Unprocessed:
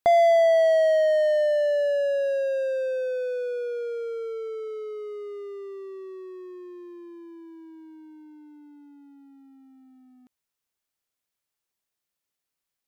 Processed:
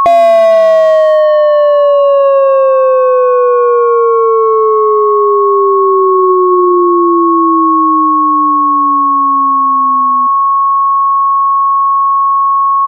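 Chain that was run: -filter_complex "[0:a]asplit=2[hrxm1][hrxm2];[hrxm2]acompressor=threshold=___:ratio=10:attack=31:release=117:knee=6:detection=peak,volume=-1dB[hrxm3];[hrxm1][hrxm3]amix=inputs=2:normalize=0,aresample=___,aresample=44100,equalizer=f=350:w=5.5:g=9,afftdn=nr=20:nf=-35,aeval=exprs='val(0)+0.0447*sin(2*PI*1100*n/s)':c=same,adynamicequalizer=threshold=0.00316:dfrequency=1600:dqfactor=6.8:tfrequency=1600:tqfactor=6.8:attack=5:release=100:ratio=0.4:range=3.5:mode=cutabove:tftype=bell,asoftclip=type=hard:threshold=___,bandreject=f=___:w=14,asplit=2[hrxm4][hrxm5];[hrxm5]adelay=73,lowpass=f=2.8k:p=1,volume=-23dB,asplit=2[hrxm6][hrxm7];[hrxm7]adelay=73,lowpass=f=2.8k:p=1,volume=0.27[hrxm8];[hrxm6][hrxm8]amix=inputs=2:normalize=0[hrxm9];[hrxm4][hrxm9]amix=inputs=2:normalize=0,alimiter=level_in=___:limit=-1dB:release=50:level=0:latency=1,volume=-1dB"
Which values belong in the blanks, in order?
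-31dB, 32000, -13dB, 1.7k, 22.5dB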